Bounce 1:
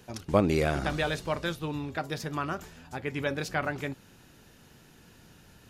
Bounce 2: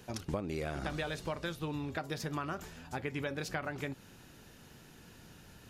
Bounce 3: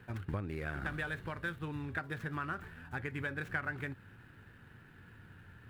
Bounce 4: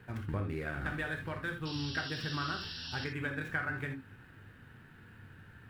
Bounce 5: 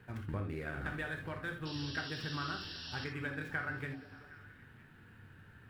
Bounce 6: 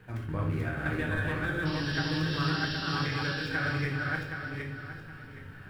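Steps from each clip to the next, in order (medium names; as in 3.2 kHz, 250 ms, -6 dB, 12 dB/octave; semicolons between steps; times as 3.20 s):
compression 10:1, threshold -33 dBFS, peak gain reduction 16 dB
median filter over 9 samples; fifteen-band graphic EQ 100 Hz +11 dB, 630 Hz -5 dB, 1.6 kHz +11 dB, 6.3 kHz -7 dB; trim -4 dB
painted sound noise, 1.65–3.05 s, 2.6–5.7 kHz -46 dBFS; gated-style reverb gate 100 ms flat, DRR 3.5 dB
repeats whose band climbs or falls 191 ms, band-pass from 360 Hz, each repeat 0.7 oct, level -10 dB; trim -3 dB
backward echo that repeats 385 ms, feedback 49%, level 0 dB; simulated room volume 75 m³, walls mixed, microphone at 0.58 m; trim +3 dB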